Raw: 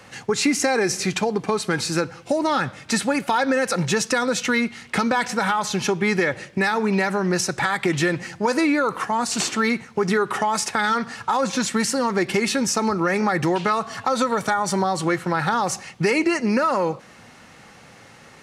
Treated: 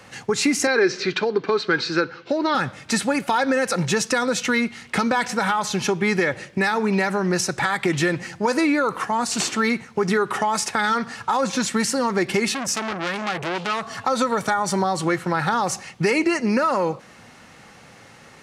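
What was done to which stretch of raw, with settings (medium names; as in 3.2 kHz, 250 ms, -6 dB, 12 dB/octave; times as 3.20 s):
0.67–2.55 s: cabinet simulation 180–4800 Hz, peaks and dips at 200 Hz -5 dB, 390 Hz +6 dB, 750 Hz -8 dB, 1.5 kHz +7 dB, 4.1 kHz +5 dB
12.54–13.91 s: transformer saturation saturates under 3.1 kHz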